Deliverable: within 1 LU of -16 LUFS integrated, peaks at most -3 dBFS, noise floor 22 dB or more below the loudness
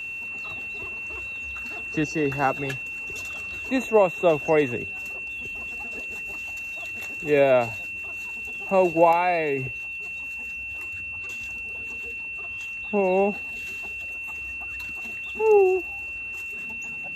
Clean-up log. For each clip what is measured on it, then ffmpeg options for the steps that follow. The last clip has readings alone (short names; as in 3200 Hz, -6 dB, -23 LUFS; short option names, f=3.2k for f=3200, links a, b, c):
steady tone 2700 Hz; tone level -31 dBFS; loudness -26.0 LUFS; peak -4.5 dBFS; loudness target -16.0 LUFS
-> -af "bandreject=f=2.7k:w=30"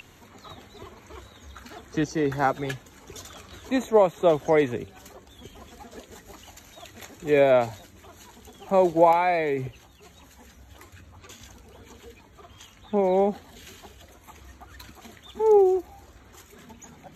steady tone none; loudness -23.0 LUFS; peak -5.0 dBFS; loudness target -16.0 LUFS
-> -af "volume=7dB,alimiter=limit=-3dB:level=0:latency=1"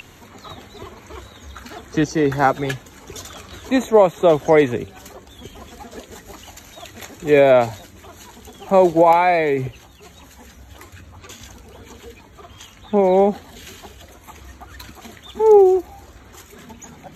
loudness -16.5 LUFS; peak -3.0 dBFS; noise floor -46 dBFS